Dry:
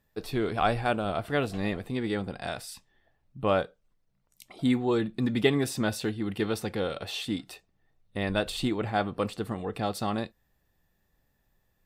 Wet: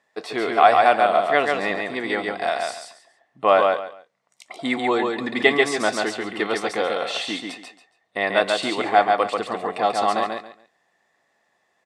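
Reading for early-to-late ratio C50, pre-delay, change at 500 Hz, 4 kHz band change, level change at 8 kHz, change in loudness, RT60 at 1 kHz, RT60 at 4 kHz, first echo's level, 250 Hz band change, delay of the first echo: no reverb audible, no reverb audible, +9.0 dB, +8.0 dB, +5.5 dB, +8.5 dB, no reverb audible, no reverb audible, −3.5 dB, +0.5 dB, 139 ms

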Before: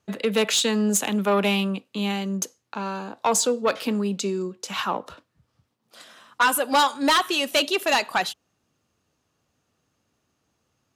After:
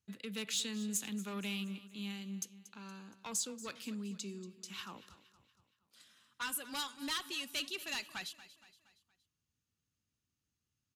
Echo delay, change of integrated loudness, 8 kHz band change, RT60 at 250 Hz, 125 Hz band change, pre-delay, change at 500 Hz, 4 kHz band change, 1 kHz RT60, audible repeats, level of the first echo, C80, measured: 234 ms, −16.5 dB, −13.0 dB, no reverb audible, −15.5 dB, no reverb audible, −25.5 dB, −14.5 dB, no reverb audible, 3, −16.5 dB, no reverb audible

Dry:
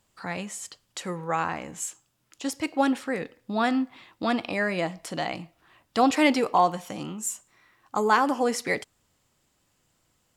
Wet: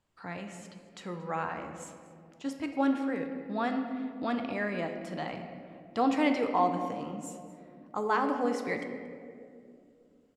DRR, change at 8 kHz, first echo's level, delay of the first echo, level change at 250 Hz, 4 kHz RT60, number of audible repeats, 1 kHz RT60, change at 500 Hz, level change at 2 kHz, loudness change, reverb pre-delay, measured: 5.0 dB, −16.0 dB, −20.0 dB, 229 ms, −3.5 dB, 1.1 s, 1, 2.1 s, −5.0 dB, −7.5 dB, −5.5 dB, 3 ms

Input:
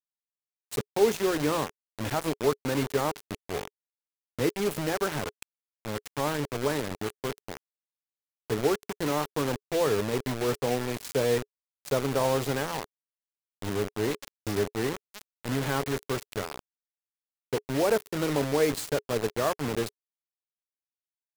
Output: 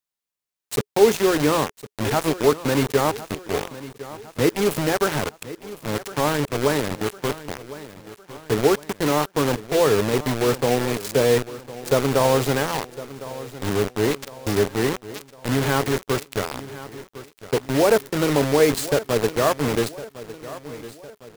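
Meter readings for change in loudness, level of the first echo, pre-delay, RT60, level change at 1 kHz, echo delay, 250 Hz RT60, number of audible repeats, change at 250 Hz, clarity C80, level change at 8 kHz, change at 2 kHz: +7.5 dB, −16.0 dB, no reverb audible, no reverb audible, +7.5 dB, 1,057 ms, no reverb audible, 3, +7.5 dB, no reverb audible, +7.5 dB, +7.5 dB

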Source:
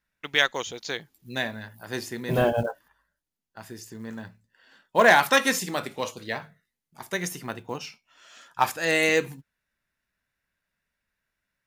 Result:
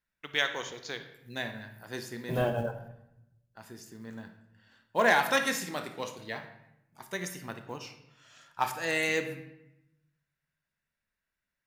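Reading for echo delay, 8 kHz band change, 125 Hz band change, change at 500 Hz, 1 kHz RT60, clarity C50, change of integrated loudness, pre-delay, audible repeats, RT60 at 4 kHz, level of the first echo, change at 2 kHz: no echo audible, −6.5 dB, −4.5 dB, −6.5 dB, 0.85 s, 9.5 dB, −6.5 dB, 26 ms, no echo audible, 0.65 s, no echo audible, −6.0 dB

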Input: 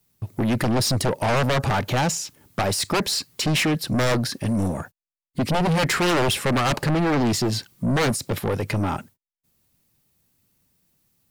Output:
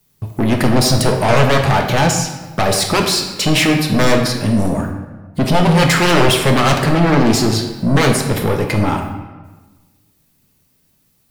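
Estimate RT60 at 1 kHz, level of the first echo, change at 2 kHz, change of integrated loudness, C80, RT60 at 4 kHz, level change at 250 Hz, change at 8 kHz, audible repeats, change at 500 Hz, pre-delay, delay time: 1.2 s, no echo audible, +8.0 dB, +8.0 dB, 7.5 dB, 0.90 s, +8.0 dB, +7.0 dB, no echo audible, +8.5 dB, 5 ms, no echo audible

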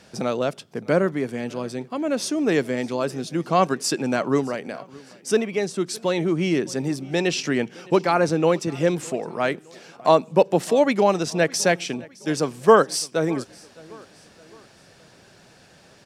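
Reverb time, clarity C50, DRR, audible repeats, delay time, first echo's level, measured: no reverb audible, no reverb audible, no reverb audible, 2, 612 ms, −23.0 dB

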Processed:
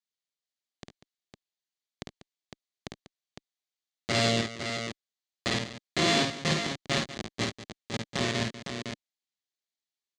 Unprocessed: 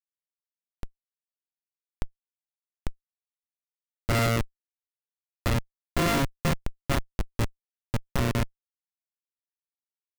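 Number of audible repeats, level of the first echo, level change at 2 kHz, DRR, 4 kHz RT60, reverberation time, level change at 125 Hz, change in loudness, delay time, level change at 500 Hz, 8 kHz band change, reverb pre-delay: 3, −4.5 dB, +2.0 dB, no reverb audible, no reverb audible, no reverb audible, −6.0 dB, −0.5 dB, 52 ms, +0.5 dB, +2.5 dB, no reverb audible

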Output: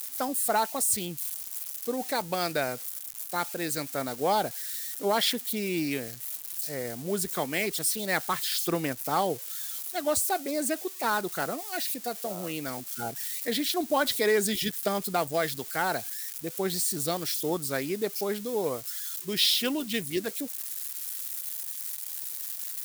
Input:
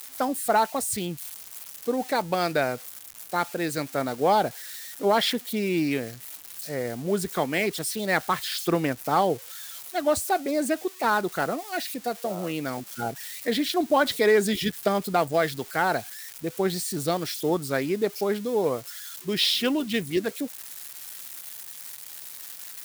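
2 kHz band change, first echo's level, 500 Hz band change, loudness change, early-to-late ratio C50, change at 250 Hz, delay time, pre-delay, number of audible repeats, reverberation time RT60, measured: −3.5 dB, no echo audible, −5.0 dB, −2.5 dB, no reverb audible, −5.0 dB, no echo audible, no reverb audible, no echo audible, no reverb audible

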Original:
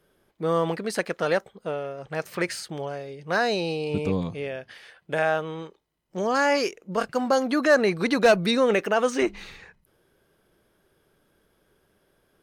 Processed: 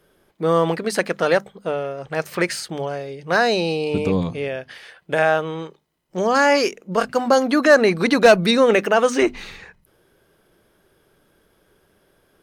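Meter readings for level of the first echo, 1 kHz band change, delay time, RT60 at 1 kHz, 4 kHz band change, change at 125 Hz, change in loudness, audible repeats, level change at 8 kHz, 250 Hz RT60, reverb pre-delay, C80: no echo audible, +6.0 dB, no echo audible, no reverb audible, +6.0 dB, +5.0 dB, +6.0 dB, no echo audible, +6.0 dB, no reverb audible, no reverb audible, no reverb audible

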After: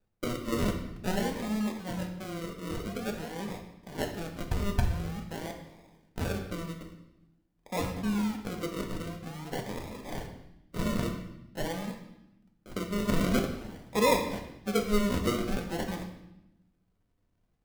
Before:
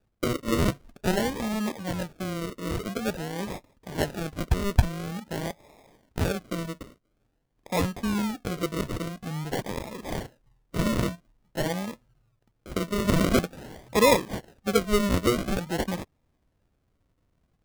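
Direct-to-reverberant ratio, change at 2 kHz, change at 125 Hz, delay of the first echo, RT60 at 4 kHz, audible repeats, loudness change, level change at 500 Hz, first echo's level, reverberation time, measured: 2.5 dB, −5.0 dB, −5.0 dB, no echo audible, 0.85 s, no echo audible, −4.5 dB, −5.0 dB, no echo audible, 0.85 s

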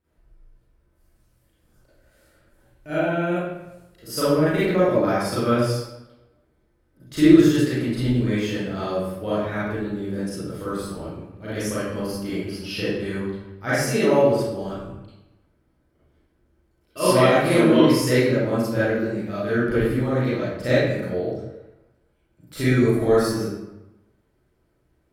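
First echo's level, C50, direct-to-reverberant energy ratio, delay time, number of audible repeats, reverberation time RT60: no echo audible, −4.5 dB, −12.0 dB, no echo audible, no echo audible, 0.95 s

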